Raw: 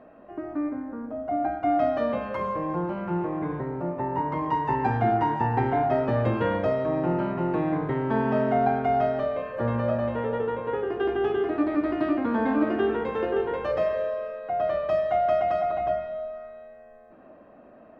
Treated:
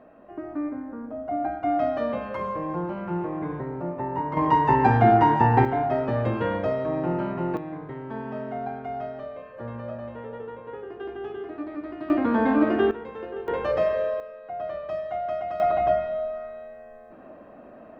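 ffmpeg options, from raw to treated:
ffmpeg -i in.wav -af "asetnsamples=nb_out_samples=441:pad=0,asendcmd='4.37 volume volume 6dB;5.65 volume volume -1dB;7.57 volume volume -9.5dB;12.1 volume volume 3dB;12.91 volume volume -9dB;13.48 volume volume 2dB;14.2 volume volume -6.5dB;15.6 volume volume 4.5dB',volume=-1dB" out.wav

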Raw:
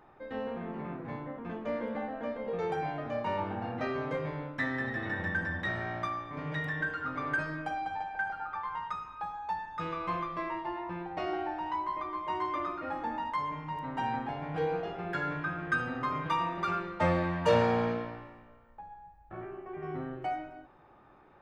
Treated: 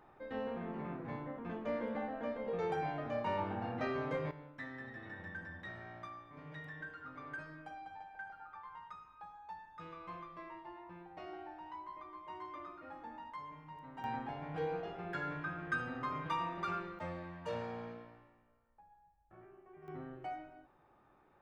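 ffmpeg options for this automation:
ffmpeg -i in.wav -af "asetnsamples=nb_out_samples=441:pad=0,asendcmd='4.31 volume volume -14dB;14.04 volume volume -6.5dB;16.99 volume volume -16dB;19.88 volume volume -9dB',volume=-3.5dB" out.wav

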